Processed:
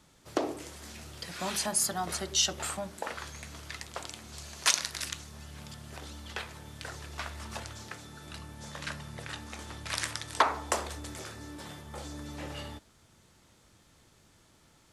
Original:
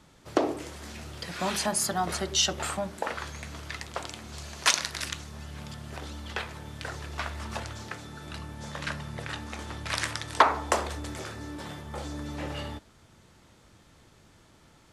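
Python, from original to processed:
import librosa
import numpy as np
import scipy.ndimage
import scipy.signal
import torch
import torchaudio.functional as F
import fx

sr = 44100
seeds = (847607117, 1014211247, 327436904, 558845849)

y = fx.high_shelf(x, sr, hz=4600.0, db=7.5)
y = y * 10.0 ** (-5.5 / 20.0)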